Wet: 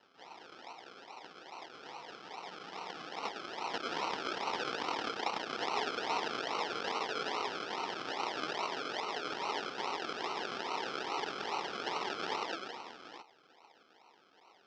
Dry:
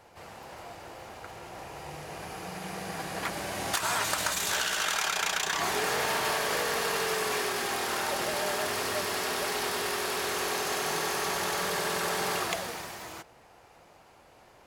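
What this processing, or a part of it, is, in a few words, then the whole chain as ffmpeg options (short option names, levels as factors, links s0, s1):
circuit-bent sampling toy: -af "acrusher=samples=37:mix=1:aa=0.000001:lfo=1:lforange=22.2:lforate=2.4,highpass=450,equalizer=f=590:t=q:w=4:g=-7,equalizer=f=920:t=q:w=4:g=6,equalizer=f=1300:t=q:w=4:g=7,equalizer=f=3100:t=q:w=4:g=7,equalizer=f=5200:t=q:w=4:g=8,lowpass=f=5300:w=0.5412,lowpass=f=5300:w=1.3066,volume=0.562"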